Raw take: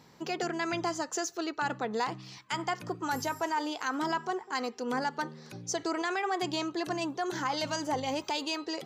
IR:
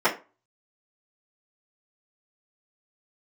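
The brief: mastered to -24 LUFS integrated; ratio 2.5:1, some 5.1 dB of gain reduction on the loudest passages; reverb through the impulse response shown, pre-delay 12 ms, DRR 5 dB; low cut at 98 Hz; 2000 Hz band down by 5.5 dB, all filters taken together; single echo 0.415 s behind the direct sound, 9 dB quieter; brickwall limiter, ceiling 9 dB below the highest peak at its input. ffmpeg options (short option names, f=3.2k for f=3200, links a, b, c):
-filter_complex "[0:a]highpass=98,equalizer=f=2k:t=o:g=-7.5,acompressor=threshold=-36dB:ratio=2.5,alimiter=level_in=9dB:limit=-24dB:level=0:latency=1,volume=-9dB,aecho=1:1:415:0.355,asplit=2[a][b];[1:a]atrim=start_sample=2205,adelay=12[c];[b][c]afir=irnorm=-1:irlink=0,volume=-22.5dB[d];[a][d]amix=inputs=2:normalize=0,volume=16.5dB"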